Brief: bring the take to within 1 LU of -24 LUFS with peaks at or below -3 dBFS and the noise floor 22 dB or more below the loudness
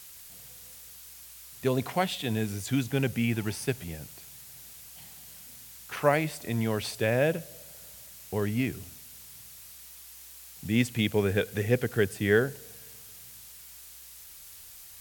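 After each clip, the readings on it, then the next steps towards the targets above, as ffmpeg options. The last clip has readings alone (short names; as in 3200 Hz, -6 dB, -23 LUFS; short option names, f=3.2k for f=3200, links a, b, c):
noise floor -48 dBFS; noise floor target -51 dBFS; loudness -28.5 LUFS; peak -8.0 dBFS; loudness target -24.0 LUFS
-> -af "afftdn=nr=6:nf=-48"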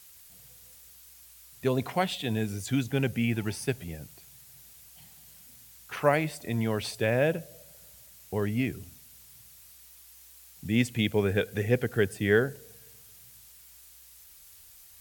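noise floor -53 dBFS; loudness -29.0 LUFS; peak -8.5 dBFS; loudness target -24.0 LUFS
-> -af "volume=5dB"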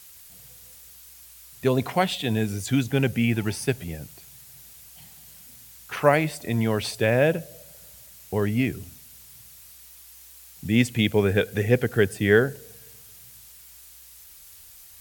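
loudness -24.0 LUFS; peak -3.5 dBFS; noise floor -48 dBFS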